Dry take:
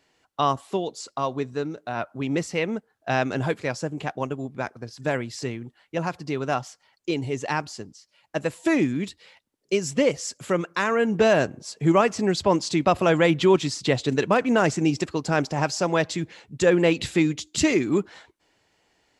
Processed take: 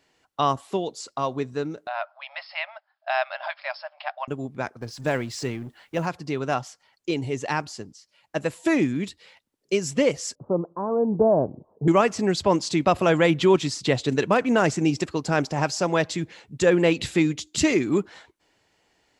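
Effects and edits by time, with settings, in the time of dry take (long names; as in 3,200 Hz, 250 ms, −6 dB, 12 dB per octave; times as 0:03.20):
0:01.87–0:04.28: linear-phase brick-wall band-pass 560–5,400 Hz
0:04.81–0:06.06: mu-law and A-law mismatch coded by mu
0:10.35–0:11.88: Butterworth low-pass 1,000 Hz 48 dB per octave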